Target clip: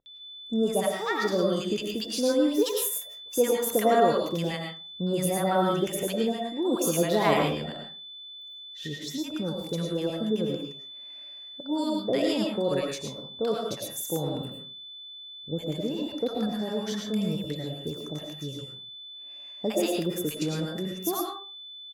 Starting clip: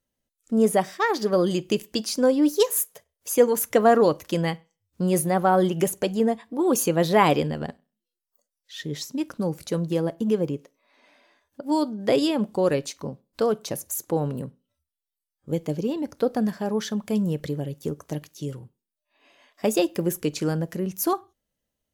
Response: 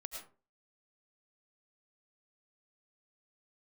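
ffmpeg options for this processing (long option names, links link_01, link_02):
-filter_complex "[0:a]aeval=exprs='val(0)+0.0112*sin(2*PI*3500*n/s)':channel_layout=same,acrossover=split=830[link_01][link_02];[link_02]adelay=60[link_03];[link_01][link_03]amix=inputs=2:normalize=0[link_04];[1:a]atrim=start_sample=2205[link_05];[link_04][link_05]afir=irnorm=-1:irlink=0"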